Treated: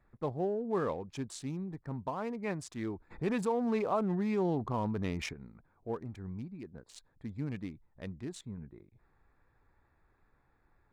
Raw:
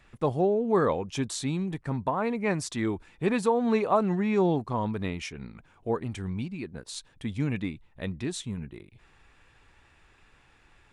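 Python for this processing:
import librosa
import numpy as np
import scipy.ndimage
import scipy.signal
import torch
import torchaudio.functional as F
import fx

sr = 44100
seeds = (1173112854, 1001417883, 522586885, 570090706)

y = fx.wiener(x, sr, points=15)
y = fx.env_flatten(y, sr, amount_pct=50, at=(3.1, 5.32), fade=0.02)
y = y * librosa.db_to_amplitude(-8.5)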